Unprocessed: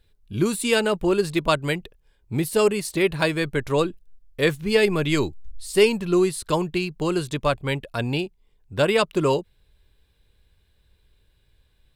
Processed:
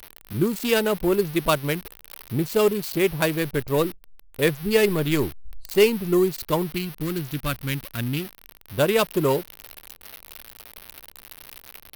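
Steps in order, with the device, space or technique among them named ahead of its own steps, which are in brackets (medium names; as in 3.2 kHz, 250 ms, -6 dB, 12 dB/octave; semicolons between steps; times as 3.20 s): local Wiener filter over 25 samples; 6.74–8.75 s: high-order bell 640 Hz -11.5 dB; budget class-D amplifier (dead-time distortion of 0.065 ms; zero-crossing glitches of -18 dBFS)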